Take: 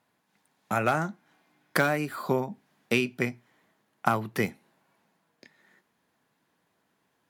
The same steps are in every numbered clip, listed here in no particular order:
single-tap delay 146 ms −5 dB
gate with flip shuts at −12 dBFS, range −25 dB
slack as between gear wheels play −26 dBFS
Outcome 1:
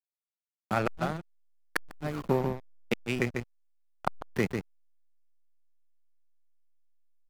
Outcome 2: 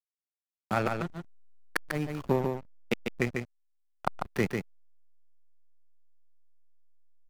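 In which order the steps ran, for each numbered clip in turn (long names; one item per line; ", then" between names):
single-tap delay, then gate with flip, then slack as between gear wheels
gate with flip, then slack as between gear wheels, then single-tap delay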